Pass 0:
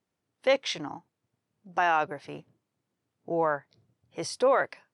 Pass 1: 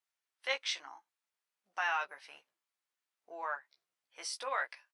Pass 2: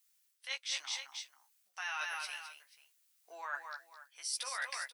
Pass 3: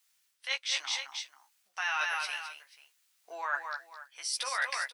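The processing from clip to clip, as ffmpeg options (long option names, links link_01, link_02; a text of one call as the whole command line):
ffmpeg -i in.wav -filter_complex "[0:a]highpass=1300,asplit=2[link_01][link_02];[link_02]adelay=15,volume=-4dB[link_03];[link_01][link_03]amix=inputs=2:normalize=0,volume=-4.5dB" out.wav
ffmpeg -i in.wav -af "aderivative,aecho=1:1:214|487:0.299|0.1,areverse,acompressor=threshold=-52dB:ratio=16,areverse,volume=17dB" out.wav
ffmpeg -i in.wav -af "highshelf=frequency=7000:gain=-9.5,volume=8dB" out.wav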